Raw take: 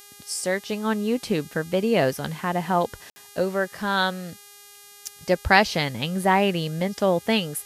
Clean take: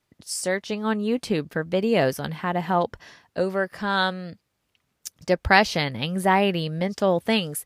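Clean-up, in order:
hum removal 407.6 Hz, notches 34
ambience match 0:03.10–0:03.16

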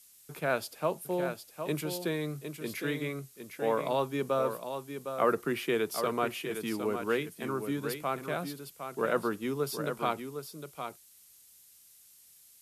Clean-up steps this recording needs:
noise reduction from a noise print 19 dB
echo removal 759 ms −8 dB

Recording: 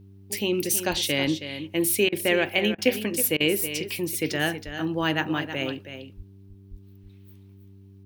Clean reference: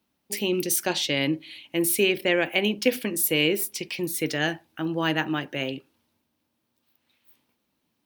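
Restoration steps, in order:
hum removal 97.6 Hz, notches 4
high-pass at the plosives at 0:00.90/0:04.65/0:06.16/0:06.70
repair the gap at 0:02.09/0:02.75/0:03.37, 32 ms
echo removal 321 ms −10.5 dB

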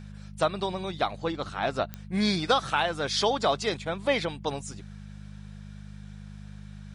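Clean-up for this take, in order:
click removal
hum removal 50.8 Hz, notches 4

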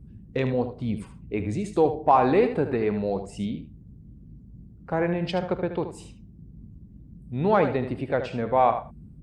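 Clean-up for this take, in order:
hum removal 54 Hz, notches 3
noise reduction from a noise print 22 dB
echo removal 76 ms −10 dB

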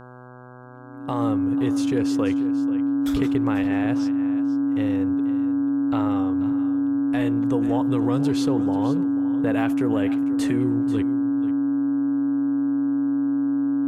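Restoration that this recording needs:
hum removal 125.1 Hz, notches 13
notch filter 280 Hz, Q 30
echo removal 488 ms −14.5 dB

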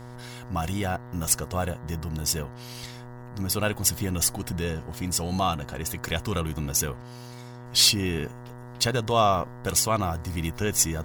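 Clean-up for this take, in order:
hum removal 122.4 Hz, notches 16
notch filter 940 Hz, Q 30

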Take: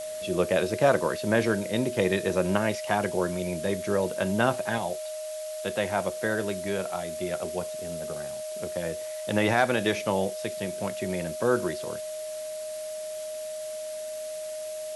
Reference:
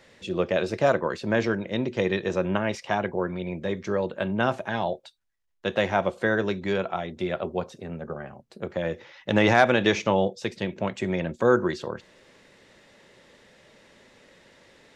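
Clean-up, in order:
notch filter 620 Hz, Q 30
noise reduction from a noise print 20 dB
level correction +4.5 dB, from 0:04.78

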